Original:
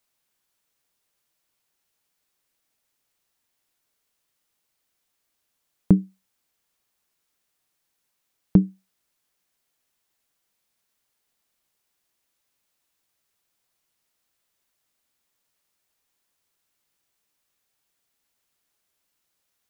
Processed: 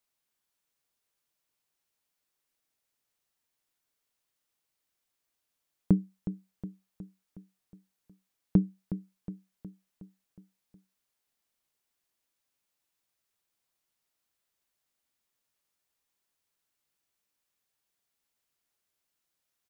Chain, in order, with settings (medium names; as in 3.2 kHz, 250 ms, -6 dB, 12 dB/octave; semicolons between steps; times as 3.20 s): feedback delay 365 ms, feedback 56%, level -12 dB; trim -7 dB